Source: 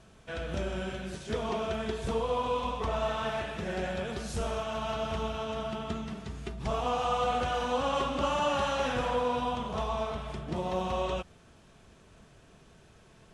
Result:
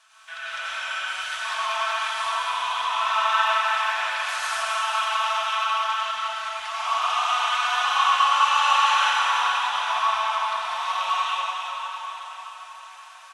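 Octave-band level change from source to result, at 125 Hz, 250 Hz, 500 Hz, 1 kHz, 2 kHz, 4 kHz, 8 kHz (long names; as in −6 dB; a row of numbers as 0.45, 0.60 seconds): below −30 dB, below −25 dB, −7.0 dB, +11.5 dB, +15.0 dB, +14.0 dB, +12.0 dB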